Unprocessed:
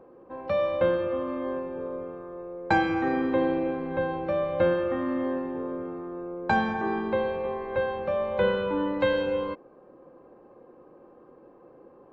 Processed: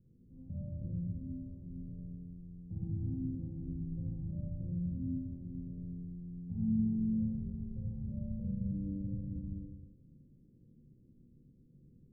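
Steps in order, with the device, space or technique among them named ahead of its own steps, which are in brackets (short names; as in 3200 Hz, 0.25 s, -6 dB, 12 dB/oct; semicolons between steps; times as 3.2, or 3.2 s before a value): club heard from the street (limiter -20 dBFS, peak gain reduction 9.5 dB; LPF 160 Hz 24 dB/oct; reverb RT60 0.95 s, pre-delay 35 ms, DRR -6 dB); gain +1 dB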